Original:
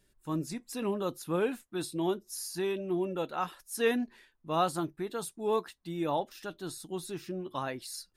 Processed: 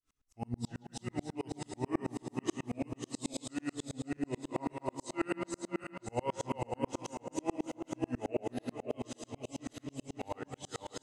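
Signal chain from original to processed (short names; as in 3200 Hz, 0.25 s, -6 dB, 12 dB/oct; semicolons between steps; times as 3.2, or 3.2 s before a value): regenerating reverse delay 0.206 s, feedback 64%, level -2.5 dB; bell 240 Hz -11.5 dB 0.33 oct; resonator 81 Hz, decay 0.2 s, harmonics all, mix 60%; tape echo 0.108 s, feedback 80%, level -9 dB, low-pass 2500 Hz; speed mistake 45 rpm record played at 33 rpm; dB-ramp tremolo swelling 9.2 Hz, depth 39 dB; gain +5 dB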